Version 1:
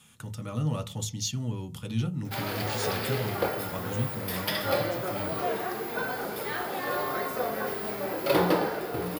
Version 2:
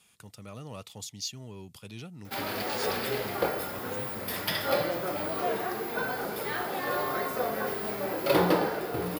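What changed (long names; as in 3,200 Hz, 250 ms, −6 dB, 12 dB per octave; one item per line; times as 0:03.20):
speech −6.5 dB
reverb: off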